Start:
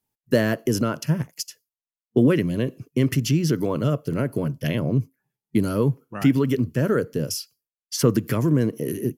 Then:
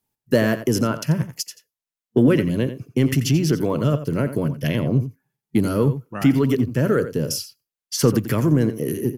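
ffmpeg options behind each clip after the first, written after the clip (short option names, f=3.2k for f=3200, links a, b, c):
-filter_complex "[0:a]asplit=2[a][b];[b]asoftclip=type=tanh:threshold=-16dB,volume=-9dB[c];[a][c]amix=inputs=2:normalize=0,asplit=2[d][e];[e]adelay=87.46,volume=-12dB,highshelf=f=4k:g=-1.97[f];[d][f]amix=inputs=2:normalize=0"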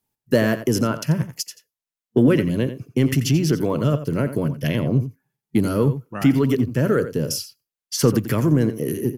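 -af anull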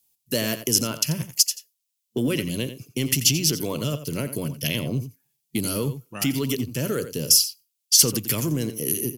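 -filter_complex "[0:a]asplit=2[a][b];[b]alimiter=limit=-12.5dB:level=0:latency=1:release=240,volume=3dB[c];[a][c]amix=inputs=2:normalize=0,aexciter=amount=6.6:drive=3.1:freq=2.4k,volume=-13.5dB"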